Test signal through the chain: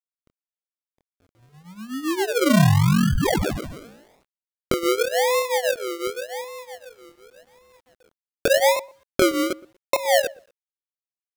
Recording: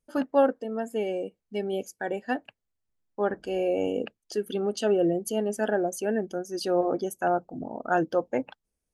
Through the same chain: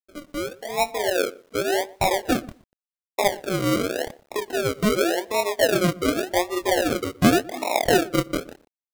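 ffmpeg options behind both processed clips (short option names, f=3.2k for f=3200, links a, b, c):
-filter_complex "[0:a]equalizer=f=490:t=o:w=1.9:g=4.5,acompressor=threshold=-27dB:ratio=10,highpass=f=380:w=0.5412,highpass=f=380:w=1.3066,equalizer=f=450:t=q:w=4:g=-9,equalizer=f=680:t=q:w=4:g=4,equalizer=f=1.6k:t=q:w=4:g=-4,lowpass=f=2.1k:w=0.5412,lowpass=f=2.1k:w=1.3066,flanger=delay=22.5:depth=5.8:speed=0.85,acrusher=samples=40:mix=1:aa=0.000001:lfo=1:lforange=24:lforate=0.88,dynaudnorm=f=150:g=9:m=15dB,asplit=2[a][b];[b]adelay=120,lowpass=f=930:p=1,volume=-19dB,asplit=2[c][d];[d]adelay=120,lowpass=f=930:p=1,volume=0.17[e];[a][c][e]amix=inputs=3:normalize=0,acrusher=bits=9:mix=0:aa=0.000001"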